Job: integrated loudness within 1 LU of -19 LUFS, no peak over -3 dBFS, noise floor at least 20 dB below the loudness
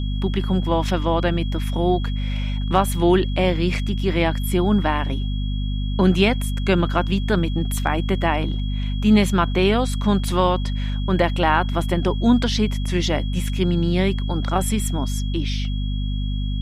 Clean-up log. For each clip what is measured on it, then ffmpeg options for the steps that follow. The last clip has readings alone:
hum 50 Hz; highest harmonic 250 Hz; hum level -21 dBFS; steady tone 3.3 kHz; tone level -38 dBFS; loudness -21.5 LUFS; peak level -3.0 dBFS; loudness target -19.0 LUFS
-> -af "bandreject=f=50:t=h:w=4,bandreject=f=100:t=h:w=4,bandreject=f=150:t=h:w=4,bandreject=f=200:t=h:w=4,bandreject=f=250:t=h:w=4"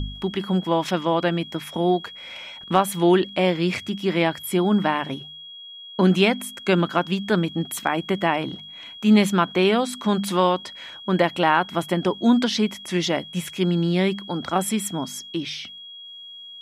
hum not found; steady tone 3.3 kHz; tone level -38 dBFS
-> -af "bandreject=f=3300:w=30"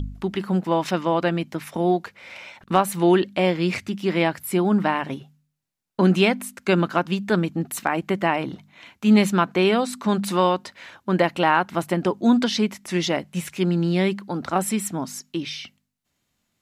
steady tone not found; loudness -22.5 LUFS; peak level -5.0 dBFS; loudness target -19.0 LUFS
-> -af "volume=1.5,alimiter=limit=0.708:level=0:latency=1"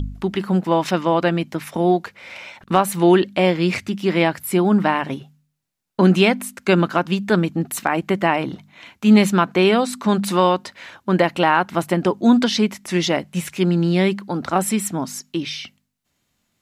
loudness -19.0 LUFS; peak level -3.0 dBFS; noise floor -71 dBFS

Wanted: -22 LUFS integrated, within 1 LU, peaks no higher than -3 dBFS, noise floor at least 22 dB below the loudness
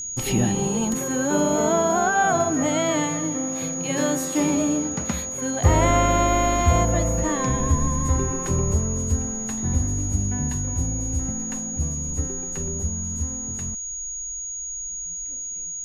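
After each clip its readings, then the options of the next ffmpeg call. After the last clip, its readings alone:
steady tone 6.7 kHz; tone level -29 dBFS; loudness -23.0 LUFS; peak level -6.5 dBFS; loudness target -22.0 LUFS
-> -af "bandreject=f=6700:w=30"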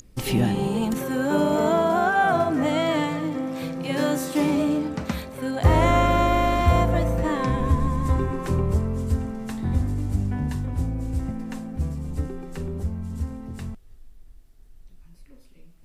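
steady tone not found; loudness -24.0 LUFS; peak level -7.0 dBFS; loudness target -22.0 LUFS
-> -af "volume=1.26"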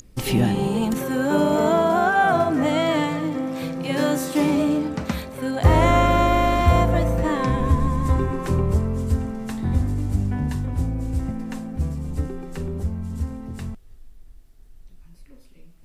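loudness -22.0 LUFS; peak level -5.0 dBFS; noise floor -47 dBFS

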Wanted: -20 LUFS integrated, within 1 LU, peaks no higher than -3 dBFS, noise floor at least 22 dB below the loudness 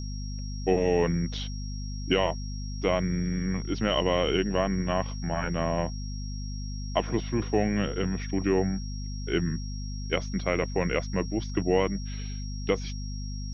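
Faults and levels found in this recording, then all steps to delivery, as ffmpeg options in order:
hum 50 Hz; highest harmonic 250 Hz; hum level -32 dBFS; steady tone 5.6 kHz; tone level -44 dBFS; loudness -29.0 LUFS; peak level -10.0 dBFS; loudness target -20.0 LUFS
-> -af "bandreject=f=50:t=h:w=6,bandreject=f=100:t=h:w=6,bandreject=f=150:t=h:w=6,bandreject=f=200:t=h:w=6,bandreject=f=250:t=h:w=6"
-af "bandreject=f=5600:w=30"
-af "volume=2.82,alimiter=limit=0.708:level=0:latency=1"

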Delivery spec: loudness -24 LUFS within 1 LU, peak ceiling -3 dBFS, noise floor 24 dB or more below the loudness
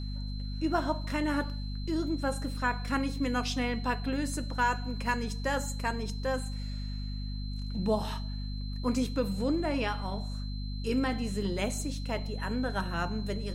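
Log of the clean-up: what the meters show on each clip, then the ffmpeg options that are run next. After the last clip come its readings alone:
hum 50 Hz; highest harmonic 250 Hz; hum level -33 dBFS; steady tone 4.1 kHz; tone level -47 dBFS; loudness -32.5 LUFS; peak level -15.0 dBFS; loudness target -24.0 LUFS
-> -af "bandreject=f=50:t=h:w=4,bandreject=f=100:t=h:w=4,bandreject=f=150:t=h:w=4,bandreject=f=200:t=h:w=4,bandreject=f=250:t=h:w=4"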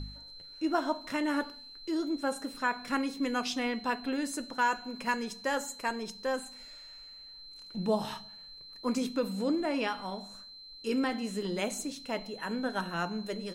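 hum not found; steady tone 4.1 kHz; tone level -47 dBFS
-> -af "bandreject=f=4100:w=30"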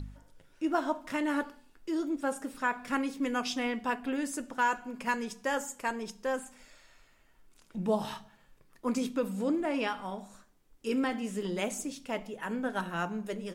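steady tone not found; loudness -33.5 LUFS; peak level -16.0 dBFS; loudness target -24.0 LUFS
-> -af "volume=2.99"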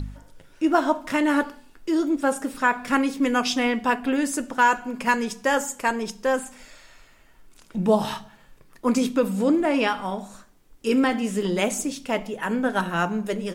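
loudness -24.0 LUFS; peak level -6.5 dBFS; noise floor -54 dBFS

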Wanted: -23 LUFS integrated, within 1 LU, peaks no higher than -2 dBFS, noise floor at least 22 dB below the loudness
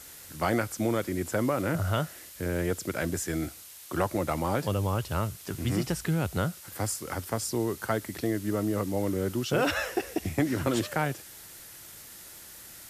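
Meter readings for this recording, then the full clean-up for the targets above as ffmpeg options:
noise floor -48 dBFS; noise floor target -52 dBFS; loudness -30.0 LUFS; peak level -13.5 dBFS; loudness target -23.0 LUFS
-> -af "afftdn=nr=6:nf=-48"
-af "volume=2.24"

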